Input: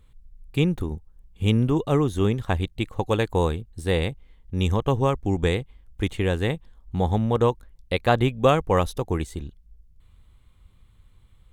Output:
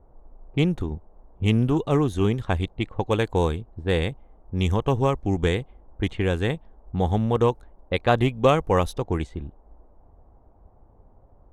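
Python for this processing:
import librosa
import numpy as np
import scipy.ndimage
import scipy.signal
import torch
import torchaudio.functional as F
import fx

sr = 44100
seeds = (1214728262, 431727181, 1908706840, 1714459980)

y = fx.env_lowpass(x, sr, base_hz=390.0, full_db=-19.0)
y = fx.dmg_noise_band(y, sr, seeds[0], low_hz=170.0, high_hz=880.0, level_db=-62.0)
y = fx.doppler_dist(y, sr, depth_ms=0.16)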